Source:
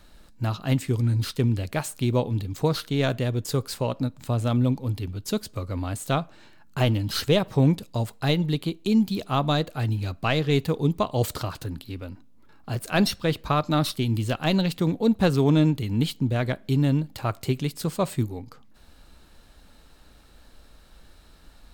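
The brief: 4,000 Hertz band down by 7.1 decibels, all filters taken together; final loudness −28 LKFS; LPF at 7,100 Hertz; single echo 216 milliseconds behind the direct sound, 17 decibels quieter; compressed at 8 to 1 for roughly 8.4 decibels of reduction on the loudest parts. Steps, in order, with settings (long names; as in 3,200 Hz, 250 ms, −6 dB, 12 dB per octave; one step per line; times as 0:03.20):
low-pass filter 7,100 Hz
parametric band 4,000 Hz −8.5 dB
downward compressor 8 to 1, threshold −24 dBFS
single-tap delay 216 ms −17 dB
level +2.5 dB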